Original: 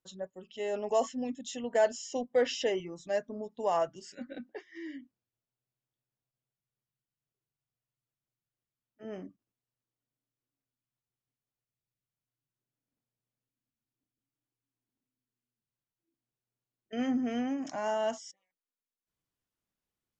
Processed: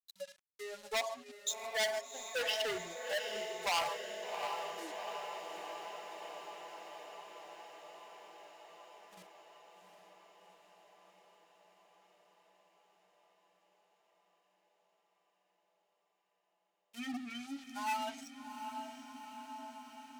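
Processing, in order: per-bin expansion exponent 3; bell 920 Hz +9.5 dB 0.87 oct; gate -59 dBFS, range -9 dB; on a send at -10.5 dB: reverb, pre-delay 3 ms; on the sum: bit-crush 10-bit; treble ducked by the level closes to 3000 Hz, closed at -32.5 dBFS; sample leveller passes 2; diffused feedback echo 0.759 s, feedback 72%, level -7.5 dB; overloaded stage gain 24 dB; tilt shelf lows -9.5 dB, about 1400 Hz; gain -4 dB

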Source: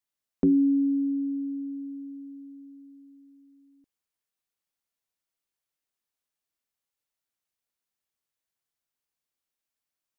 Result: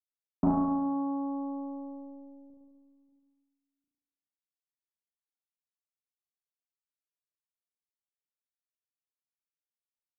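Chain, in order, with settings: 2.5–3.09 low shelf 71 Hz -8 dB; in parallel at +2 dB: compressor 6:1, threshold -31 dBFS, peak gain reduction 12 dB; on the sum: sample leveller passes 3; Gaussian blur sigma 20 samples; added harmonics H 3 -11 dB, 4 -20 dB, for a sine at -11 dBFS; on a send: flutter echo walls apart 6 m, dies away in 1.1 s; on the sum: gain -7.5 dB

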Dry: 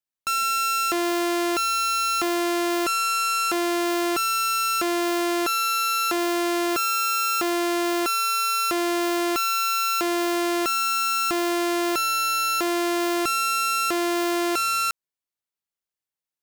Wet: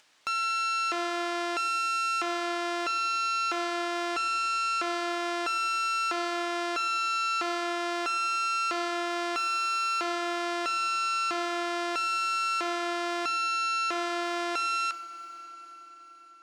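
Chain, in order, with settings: HPF 780 Hz 6 dB/oct; air absorption 110 m; FDN reverb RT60 2.4 s, low-frequency decay 1.2×, high-frequency decay 0.95×, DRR 8 dB; upward compressor, threshold -34 dBFS; gain -2 dB

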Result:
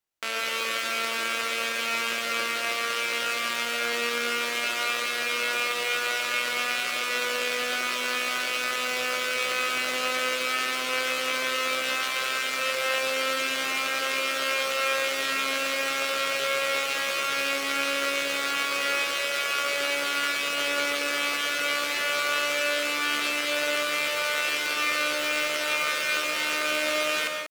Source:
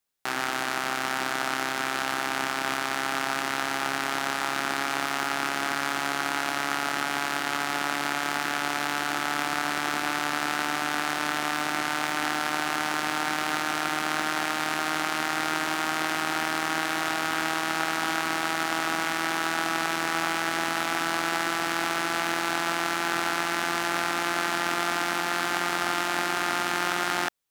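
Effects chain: high shelf 2700 Hz -4.5 dB; pitch shift +9.5 st; on a send: reverb RT60 1.2 s, pre-delay 89 ms, DRR 3 dB

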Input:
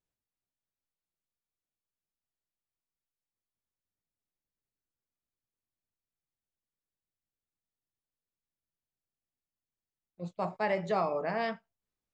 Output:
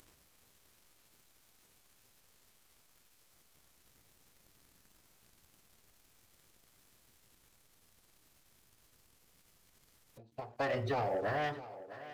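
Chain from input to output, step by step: notches 50/100/150/200/250/300/350/400/450 Hz; formant-preserving pitch shift -7.5 st; upward compressor, threshold -39 dBFS; sample leveller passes 2; compressor 6:1, threshold -32 dBFS, peak gain reduction 8.5 dB; on a send: thinning echo 0.655 s, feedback 52%, high-pass 180 Hz, level -14.5 dB; on the sum: ending taper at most 140 dB/s

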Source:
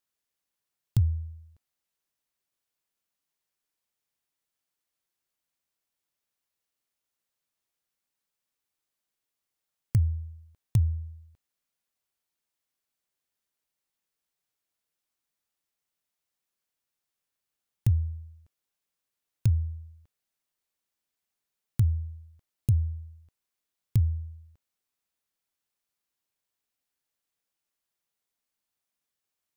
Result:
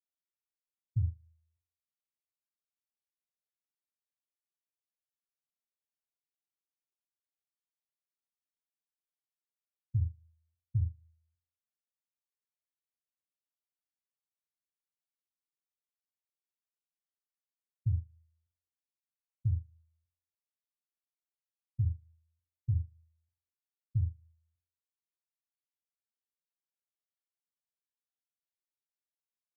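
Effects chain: spectral contrast raised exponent 1.8; flutter echo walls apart 8 m, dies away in 0.49 s; upward expander 2.5:1, over -30 dBFS; gain -6.5 dB

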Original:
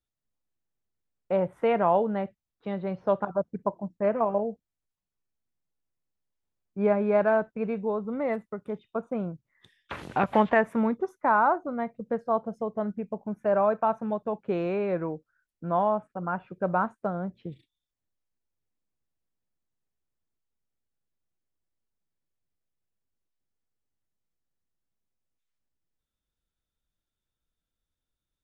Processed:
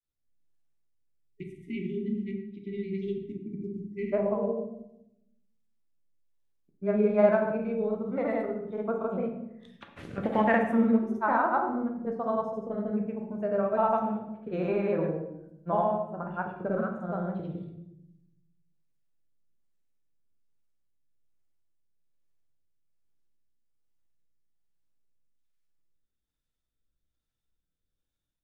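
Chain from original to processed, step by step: grains, grains 20/s, pitch spread up and down by 0 st; spectral delete 1.28–4.13, 420–1900 Hz; rotary speaker horn 1.2 Hz; on a send: reverb RT60 0.85 s, pre-delay 12 ms, DRR 3 dB

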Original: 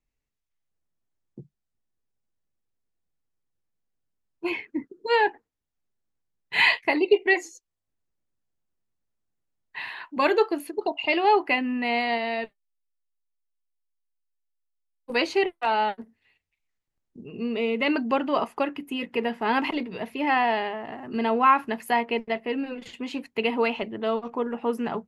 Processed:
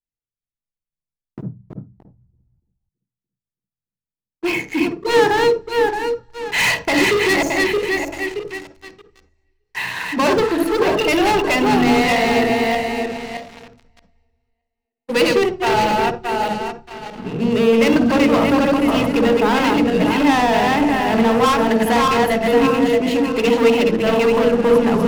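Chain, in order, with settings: regenerating reverse delay 0.311 s, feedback 51%, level -3 dB; sample leveller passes 5; on a send: reverb, pre-delay 47 ms, DRR 7.5 dB; on the sum: gain -7.5 dB

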